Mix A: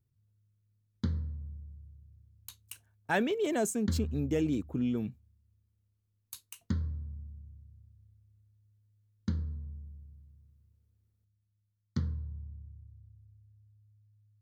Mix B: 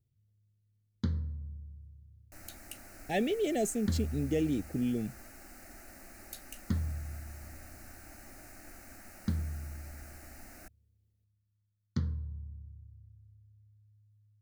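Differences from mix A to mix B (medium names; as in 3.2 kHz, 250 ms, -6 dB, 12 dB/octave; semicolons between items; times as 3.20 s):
speech: add Chebyshev band-stop 800–1800 Hz, order 4; second sound: unmuted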